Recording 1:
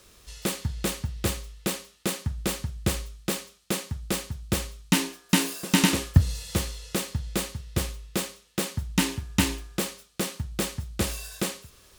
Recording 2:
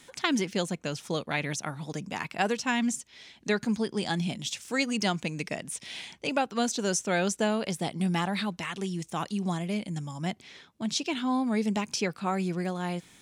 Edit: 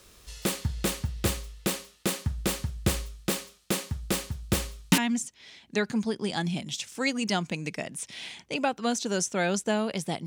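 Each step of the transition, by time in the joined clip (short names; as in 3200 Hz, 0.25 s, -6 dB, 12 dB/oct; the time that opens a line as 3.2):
recording 1
4.98 switch to recording 2 from 2.71 s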